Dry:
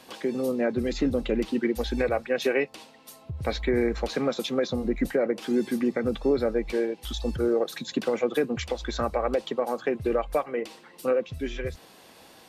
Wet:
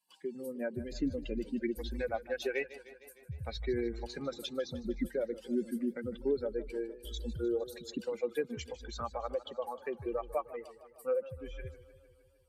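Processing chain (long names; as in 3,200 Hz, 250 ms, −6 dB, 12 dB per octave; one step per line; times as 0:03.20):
spectral dynamics exaggerated over time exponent 2
feedback echo with a swinging delay time 153 ms, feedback 66%, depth 101 cents, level −16.5 dB
level −5 dB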